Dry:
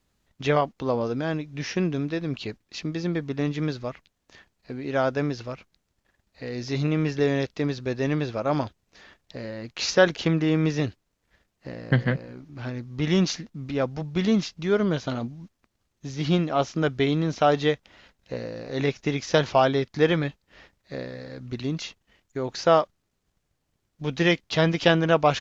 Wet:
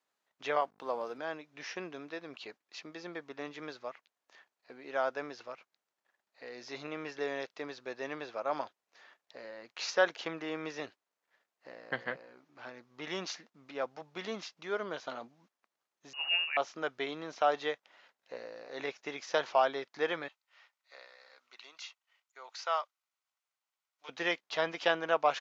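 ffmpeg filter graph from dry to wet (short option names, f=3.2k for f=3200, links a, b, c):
-filter_complex "[0:a]asettb=1/sr,asplit=3[a][b][c];[a]atrim=end=0.604[d];[b]atrim=start=0.6:end=1.18,asetpts=PTS-STARTPTS,afade=t=in:d=0.004:c=qsin,afade=t=out:st=0.576:d=0.004:c=qsin,aeval=exprs='val(0)+0.0141*(sin(2*PI*50*n/s)+sin(2*PI*2*50*n/s)/2+sin(2*PI*3*50*n/s)/3+sin(2*PI*4*50*n/s)/4+sin(2*PI*5*50*n/s)/5)':c=same,highpass=110,aeval=exprs='sgn(val(0))*max(abs(val(0))-0.00237,0)':c=same[e];[c]atrim=start=1.176[f];[d][e]acrossfade=d=0.004:c1=hsin:c2=qsin[g];[g][f]acrossfade=d=0.004:c1=qsin:c2=hsin,asettb=1/sr,asplit=3[h][i][j];[h]atrim=end=16.134[k];[i]atrim=start=16.13:end=16.57,asetpts=PTS-STARTPTS,afade=t=in:d=0.004:c=qsin,afade=t=out:st=0.436:d=0.004:c=qsin,highpass=42,lowpass=f=2.6k:t=q:w=0.5098,lowpass=f=2.6k:t=q:w=0.6013,lowpass=f=2.6k:t=q:w=0.9,lowpass=f=2.6k:t=q:w=2.563,afreqshift=-3000[l];[j]atrim=start=16.566[m];[k][l]acrossfade=d=0.004:c1=hsin:c2=qsin[n];[n][m]acrossfade=d=0.004:c1=qsin:c2=hsin,asettb=1/sr,asplit=3[o][p][q];[o]atrim=end=20.284[r];[p]atrim=start=20.28:end=24.09,asetpts=PTS-STARTPTS,afade=t=in:d=0.004:c=qsin,afade=t=out:st=3.806:d=0.004:c=qsin,highpass=1.1k,bandreject=f=1.7k:w=7.8[s];[q]atrim=start=24.086[t];[r][s]acrossfade=d=0.004:c1=hsin:c2=qsin[u];[u][t]acrossfade=d=0.004:c1=qsin:c2=hsin,highpass=850,tiltshelf=f=1.4k:g=6,volume=-5.5dB"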